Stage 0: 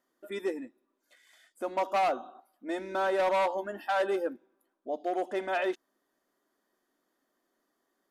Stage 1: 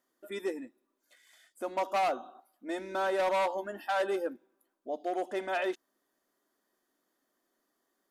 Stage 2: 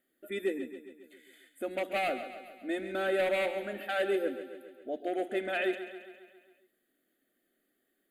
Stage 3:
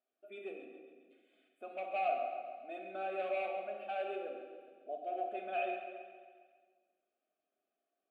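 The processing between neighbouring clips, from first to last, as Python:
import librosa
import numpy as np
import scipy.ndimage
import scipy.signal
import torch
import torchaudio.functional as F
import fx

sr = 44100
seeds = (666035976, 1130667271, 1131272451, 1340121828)

y1 = fx.high_shelf(x, sr, hz=4600.0, db=5.0)
y1 = y1 * librosa.db_to_amplitude(-2.0)
y2 = fx.fixed_phaser(y1, sr, hz=2400.0, stages=4)
y2 = fx.echo_feedback(y2, sr, ms=136, feedback_pct=59, wet_db=-11.5)
y2 = y2 * librosa.db_to_amplitude(4.0)
y3 = fx.vowel_filter(y2, sr, vowel='a')
y3 = fx.room_shoebox(y3, sr, seeds[0], volume_m3=1300.0, walls='mixed', distance_m=1.4)
y3 = y3 * librosa.db_to_amplitude(2.0)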